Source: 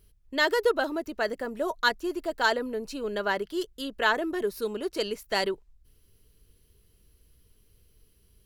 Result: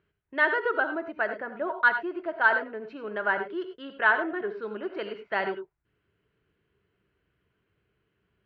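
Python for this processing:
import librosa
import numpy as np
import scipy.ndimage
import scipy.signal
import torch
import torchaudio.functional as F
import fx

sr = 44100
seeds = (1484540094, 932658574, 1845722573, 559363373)

y = fx.cabinet(x, sr, low_hz=180.0, low_slope=12, high_hz=2400.0, hz=(250.0, 480.0, 1500.0), db=(-8, -7, 6))
y = fx.rev_gated(y, sr, seeds[0], gate_ms=120, shape='rising', drr_db=8.0)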